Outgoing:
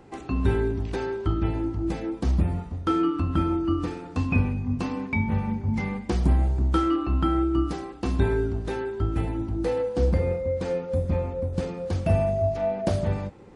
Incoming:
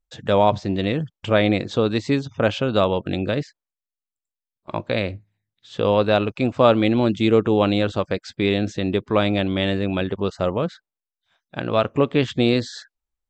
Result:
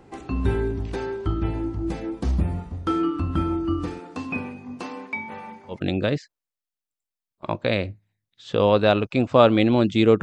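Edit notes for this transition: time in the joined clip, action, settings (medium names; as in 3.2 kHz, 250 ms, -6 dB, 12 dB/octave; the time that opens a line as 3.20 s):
outgoing
3.99–5.80 s: high-pass 220 Hz -> 660 Hz
5.74 s: go over to incoming from 2.99 s, crossfade 0.12 s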